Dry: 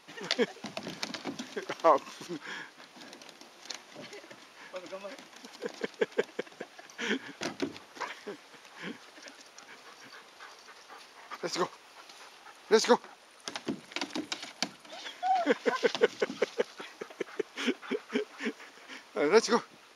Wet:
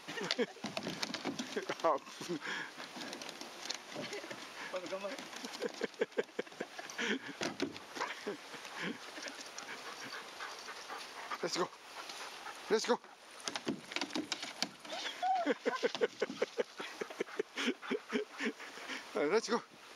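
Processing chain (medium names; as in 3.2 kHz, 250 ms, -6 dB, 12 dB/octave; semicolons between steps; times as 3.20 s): compression 2:1, threshold -45 dBFS, peak gain reduction 15.5 dB; trim +5 dB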